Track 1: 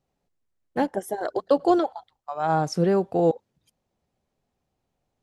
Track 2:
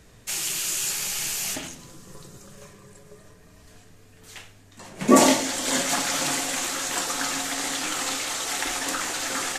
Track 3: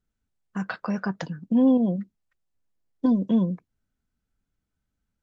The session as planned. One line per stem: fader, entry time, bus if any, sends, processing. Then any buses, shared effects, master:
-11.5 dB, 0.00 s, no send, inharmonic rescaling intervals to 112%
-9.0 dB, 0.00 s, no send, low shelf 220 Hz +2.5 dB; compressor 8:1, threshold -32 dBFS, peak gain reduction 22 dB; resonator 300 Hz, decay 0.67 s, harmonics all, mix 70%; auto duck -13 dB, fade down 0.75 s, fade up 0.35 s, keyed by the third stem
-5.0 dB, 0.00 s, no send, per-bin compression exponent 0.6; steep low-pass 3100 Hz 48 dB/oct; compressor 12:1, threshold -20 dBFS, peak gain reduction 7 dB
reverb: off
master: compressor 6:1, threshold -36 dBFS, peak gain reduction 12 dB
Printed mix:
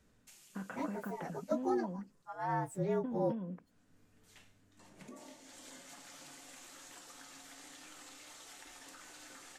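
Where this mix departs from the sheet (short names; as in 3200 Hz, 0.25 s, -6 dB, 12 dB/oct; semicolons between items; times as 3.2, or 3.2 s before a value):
stem 3 -5.0 dB -> -16.5 dB; master: missing compressor 6:1, threshold -36 dBFS, peak gain reduction 12 dB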